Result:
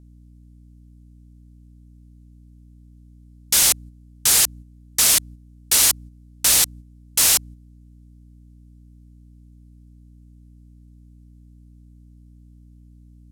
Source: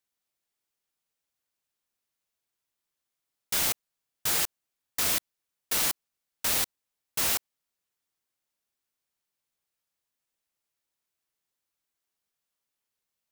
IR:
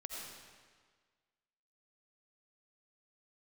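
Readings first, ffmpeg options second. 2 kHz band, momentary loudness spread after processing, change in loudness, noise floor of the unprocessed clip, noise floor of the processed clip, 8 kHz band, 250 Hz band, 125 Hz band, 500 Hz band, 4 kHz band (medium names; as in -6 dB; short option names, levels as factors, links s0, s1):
+7.0 dB, 8 LU, +10.5 dB, under -85 dBFS, -48 dBFS, +14.5 dB, +6.0 dB, +11.0 dB, +4.0 dB, +11.0 dB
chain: -af "lowpass=9800,crystalizer=i=3.5:c=0,acontrast=51,aeval=exprs='val(0)+0.0141*(sin(2*PI*60*n/s)+sin(2*PI*2*60*n/s)/2+sin(2*PI*3*60*n/s)/3+sin(2*PI*4*60*n/s)/4+sin(2*PI*5*60*n/s)/5)':c=same,agate=range=0.447:threshold=0.0224:ratio=16:detection=peak,volume=0.794"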